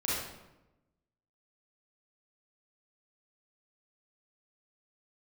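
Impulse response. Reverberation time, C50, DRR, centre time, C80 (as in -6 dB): 1.0 s, -2.5 dB, -8.0 dB, 81 ms, 2.0 dB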